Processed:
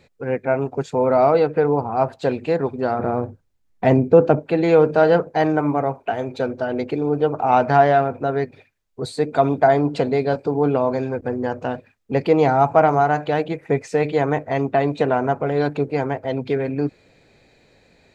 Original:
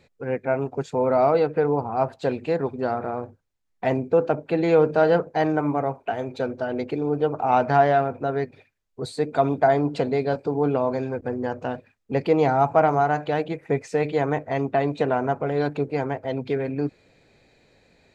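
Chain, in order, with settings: 2.99–4.39 low shelf 430 Hz +8 dB; gain +3.5 dB

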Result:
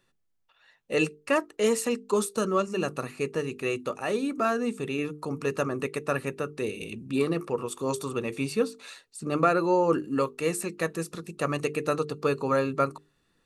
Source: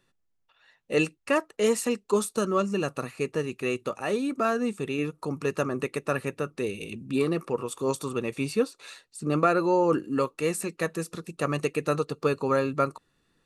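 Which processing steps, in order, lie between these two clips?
notches 50/100/150/200/250/300/350/400/450 Hz

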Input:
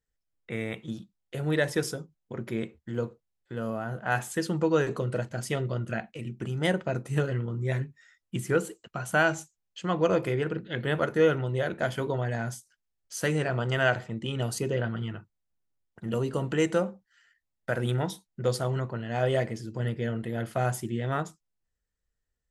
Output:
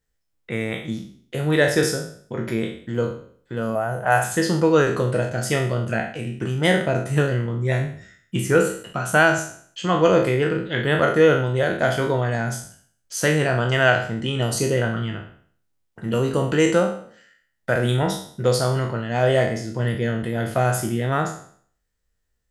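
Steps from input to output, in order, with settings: spectral trails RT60 0.54 s; 3.75–4.24 fifteen-band EQ 250 Hz -10 dB, 630 Hz +7 dB, 4000 Hz -9 dB, 10000 Hz +10 dB; gain +6.5 dB

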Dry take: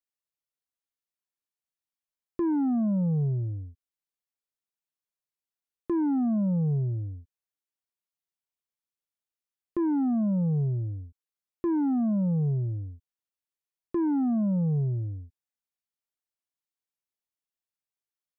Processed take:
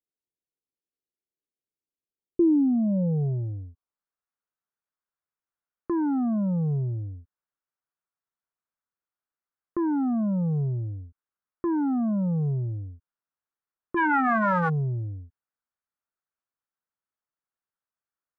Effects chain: 13.96–14.68 spectral whitening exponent 0.1; low-pass sweep 400 Hz -> 1400 Hz, 2.61–4.07

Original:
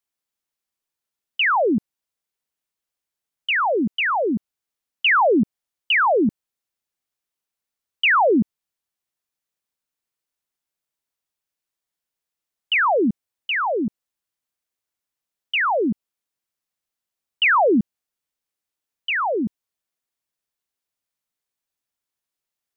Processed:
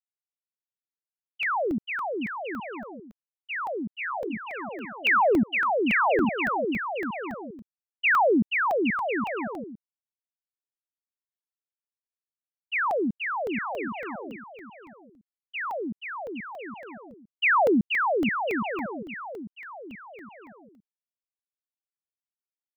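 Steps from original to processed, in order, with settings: expander -12 dBFS; wow and flutter 26 cents; bouncing-ball echo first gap 0.48 s, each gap 0.7×, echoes 5; crackling interface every 0.28 s, samples 64, zero, from 0.31

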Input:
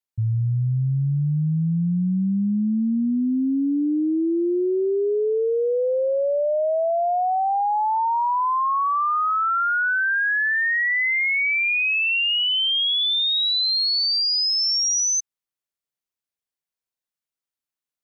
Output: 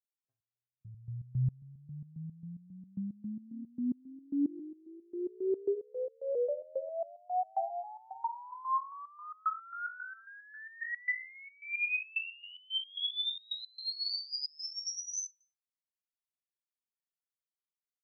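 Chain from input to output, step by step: three bands offset in time highs, mids, lows 0.11/0.67 s, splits 570/5300 Hz; stepped resonator 7.4 Hz 96–920 Hz; gain -2.5 dB

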